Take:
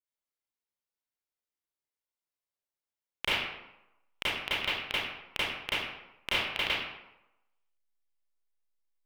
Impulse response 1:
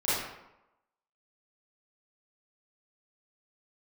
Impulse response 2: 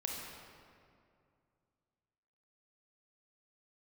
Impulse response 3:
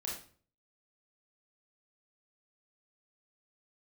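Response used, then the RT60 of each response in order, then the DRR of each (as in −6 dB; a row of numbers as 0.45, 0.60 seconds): 1; 0.90, 2.4, 0.45 seconds; −13.0, −1.5, −4.0 decibels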